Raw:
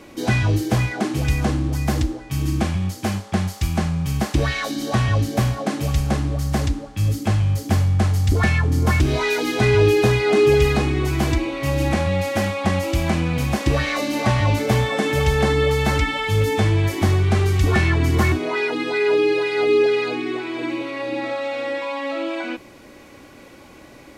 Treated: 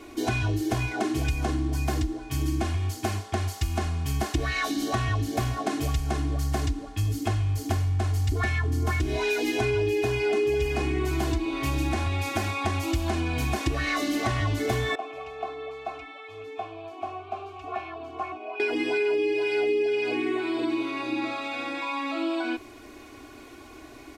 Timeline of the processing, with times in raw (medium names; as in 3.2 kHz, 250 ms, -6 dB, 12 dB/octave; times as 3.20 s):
14.95–18.60 s: vowel filter a
whole clip: comb 2.8 ms, depth 95%; compression, threshold -18 dBFS; trim -4.5 dB